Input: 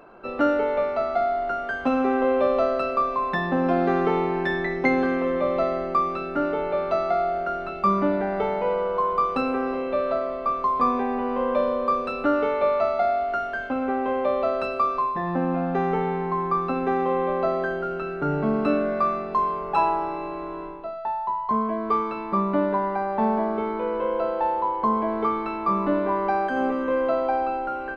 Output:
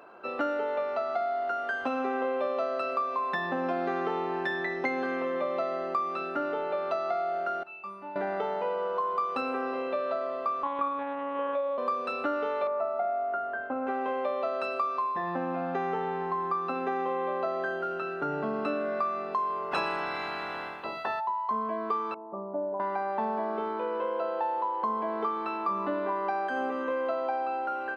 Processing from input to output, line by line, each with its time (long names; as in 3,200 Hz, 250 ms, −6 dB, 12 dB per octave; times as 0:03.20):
0:07.63–0:08.16: tuned comb filter 890 Hz, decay 0.16 s, harmonics odd, mix 90%
0:10.63–0:11.78: one-pitch LPC vocoder at 8 kHz 280 Hz
0:12.67–0:13.87: low-pass filter 1,300 Hz
0:19.71–0:21.19: ceiling on every frequency bin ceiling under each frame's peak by 24 dB
0:22.14–0:22.80: transistor ladder low-pass 810 Hz, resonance 50%
whole clip: high-pass filter 530 Hz 6 dB per octave; notch filter 2,200 Hz, Q 26; downward compressor 3 to 1, threshold −28 dBFS